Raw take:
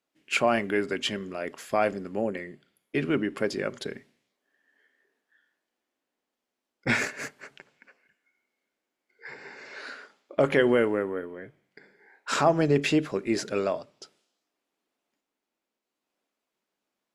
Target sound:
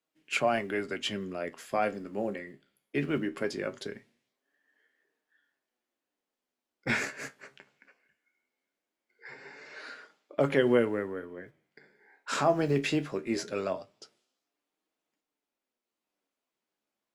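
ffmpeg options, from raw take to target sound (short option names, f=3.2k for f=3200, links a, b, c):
-filter_complex "[0:a]acrossover=split=150|2700[a][b][c];[a]acrusher=bits=4:mode=log:mix=0:aa=0.000001[d];[d][b][c]amix=inputs=3:normalize=0,flanger=delay=6.3:depth=8.6:regen=58:speed=0.2:shape=sinusoidal"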